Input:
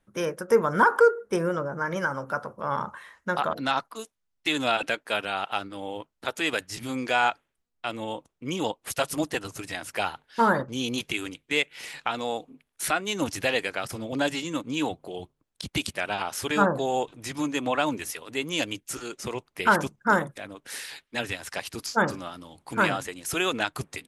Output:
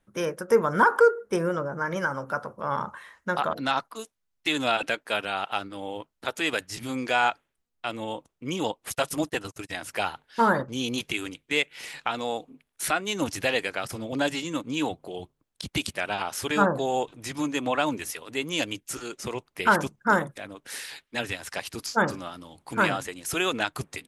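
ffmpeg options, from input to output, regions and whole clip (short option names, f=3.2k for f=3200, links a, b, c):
-filter_complex "[0:a]asettb=1/sr,asplit=3[a][b][c];[a]atrim=end=8.904[d];[b]atrim=start=8.9:end=9.78,asetpts=PTS-STARTPTS,afade=t=in:d=0.004:c=qsin,afade=t=out:st=0.876:d=0.004:c=qsin,agate=range=-34dB:threshold=-40dB:ratio=16:release=100:detection=peak,bandreject=f=4.5k:w=22[e];[c]atrim=start=9.776[f];[d][e]acrossfade=d=0.004:c1=hsin:c2=qsin[g];[g][f]acrossfade=d=0.004:c1=qsin:c2=hsin"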